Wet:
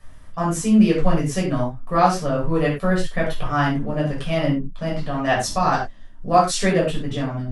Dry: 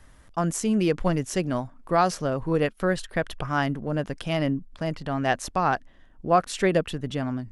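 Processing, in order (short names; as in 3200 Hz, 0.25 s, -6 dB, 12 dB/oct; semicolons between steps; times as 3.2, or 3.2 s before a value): 5.43–6.69 band shelf 6500 Hz +8 dB; reverb, pre-delay 7 ms, DRR -5 dB; gain -4.5 dB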